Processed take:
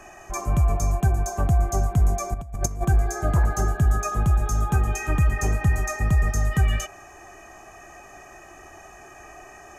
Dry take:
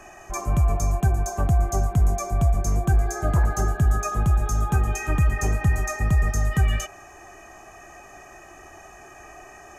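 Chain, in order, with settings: 2.34–2.85 negative-ratio compressor -26 dBFS, ratio -0.5

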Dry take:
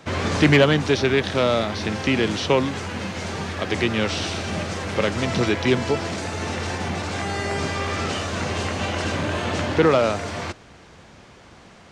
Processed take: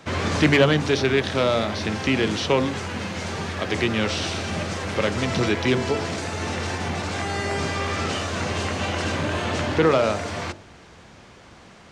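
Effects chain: de-hum 48.14 Hz, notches 19; in parallel at -8.5 dB: soft clip -17.5 dBFS, distortion -10 dB; on the sum: gain -2.5 dB

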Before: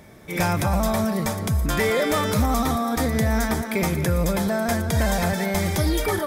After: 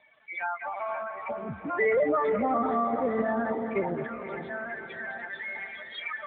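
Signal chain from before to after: HPF 920 Hz 12 dB/oct, from 1.29 s 310 Hz, from 4.04 s 1500 Hz; loudest bins only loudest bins 8; bit-crush 10-bit; diffused feedback echo 0.492 s, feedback 49%, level -8 dB; AMR-NB 10.2 kbps 8000 Hz

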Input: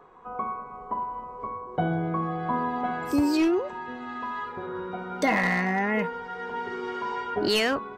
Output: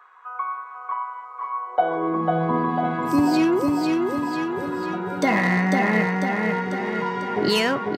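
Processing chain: high-pass sweep 1400 Hz -> 130 Hz, 1.47–2.48; feedback echo 0.497 s, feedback 56%, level -3 dB; gain +2 dB

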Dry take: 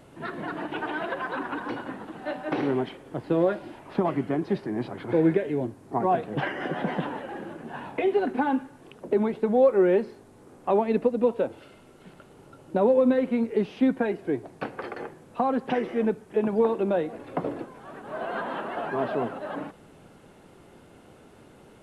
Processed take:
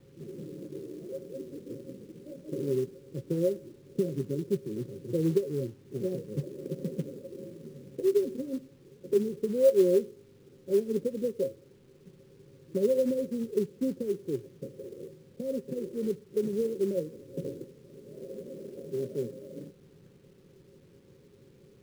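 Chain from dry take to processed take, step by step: rippled Chebyshev low-pass 560 Hz, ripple 9 dB; companded quantiser 6-bit

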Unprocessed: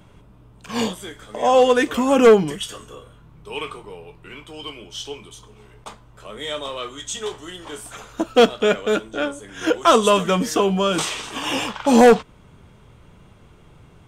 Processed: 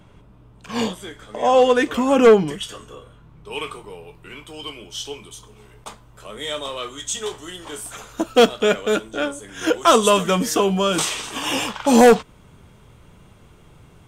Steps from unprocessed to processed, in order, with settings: high shelf 7300 Hz -5 dB, from 3.51 s +8 dB

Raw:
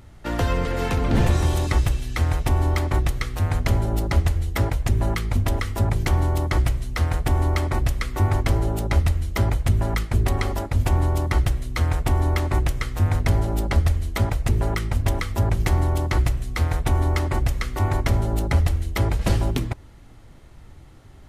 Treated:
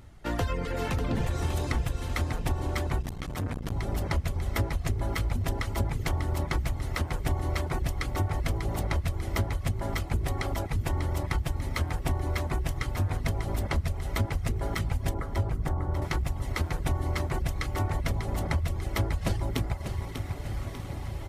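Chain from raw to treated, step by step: diffused feedback echo 1.471 s, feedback 73%, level -12.5 dB; compressor, threshold -19 dBFS, peak gain reduction 6.5 dB; 15.14–16.02 LPF 1500 Hz 24 dB/oct; reverb removal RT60 0.72 s; feedback echo 0.594 s, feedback 45%, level -8 dB; 3.01–3.72 core saturation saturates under 300 Hz; gain -3.5 dB

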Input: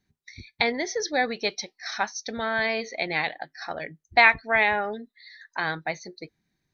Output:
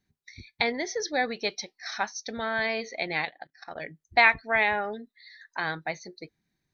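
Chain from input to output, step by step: 3.25–3.78 level quantiser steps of 18 dB; gain -2.5 dB

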